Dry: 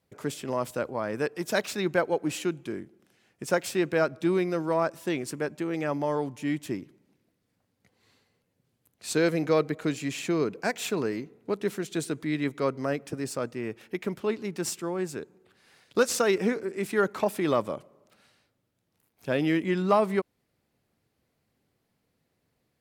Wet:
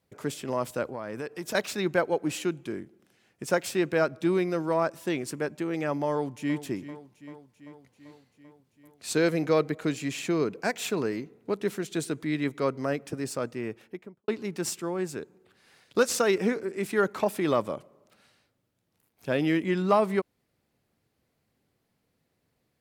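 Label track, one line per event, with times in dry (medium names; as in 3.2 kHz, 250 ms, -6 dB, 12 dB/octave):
0.880000	1.550000	compression 4:1, threshold -31 dBFS
6.100000	6.610000	echo throw 390 ms, feedback 70%, level -14.5 dB
13.600000	14.280000	studio fade out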